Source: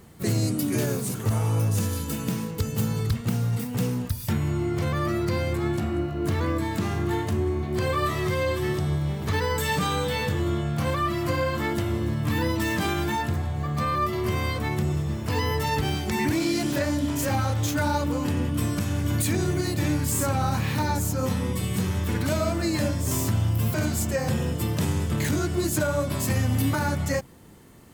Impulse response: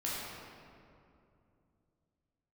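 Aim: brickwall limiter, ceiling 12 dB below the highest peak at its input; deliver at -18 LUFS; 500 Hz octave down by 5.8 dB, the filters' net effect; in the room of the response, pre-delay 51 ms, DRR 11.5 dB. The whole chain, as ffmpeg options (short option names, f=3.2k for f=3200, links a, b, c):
-filter_complex "[0:a]equalizer=f=500:t=o:g=-8,alimiter=level_in=2.5dB:limit=-24dB:level=0:latency=1,volume=-2.5dB,asplit=2[a][b];[1:a]atrim=start_sample=2205,adelay=51[c];[b][c]afir=irnorm=-1:irlink=0,volume=-16.5dB[d];[a][d]amix=inputs=2:normalize=0,volume=16.5dB"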